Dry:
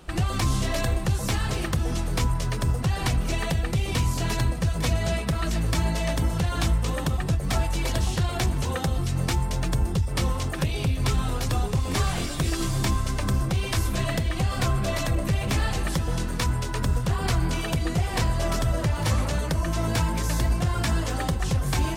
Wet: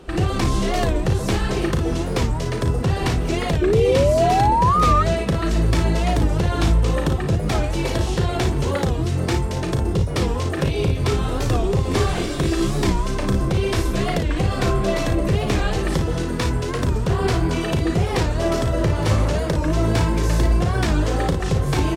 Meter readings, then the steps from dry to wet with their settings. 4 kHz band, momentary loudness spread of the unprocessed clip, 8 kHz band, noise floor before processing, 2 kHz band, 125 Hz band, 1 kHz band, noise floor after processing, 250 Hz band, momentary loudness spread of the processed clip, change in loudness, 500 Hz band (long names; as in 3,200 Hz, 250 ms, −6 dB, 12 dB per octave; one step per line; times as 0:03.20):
+2.5 dB, 2 LU, 0.0 dB, −30 dBFS, +3.5 dB, +4.0 dB, +8.5 dB, −24 dBFS, +7.0 dB, 6 LU, +5.5 dB, +10.5 dB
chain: parametric band 390 Hz +9 dB 0.9 octaves
ambience of single reflections 36 ms −8 dB, 56 ms −8 dB
sound drawn into the spectrogram rise, 0:03.62–0:05.03, 390–1,400 Hz −20 dBFS
high-shelf EQ 8,700 Hz −10 dB
wow of a warped record 45 rpm, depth 160 cents
level +2.5 dB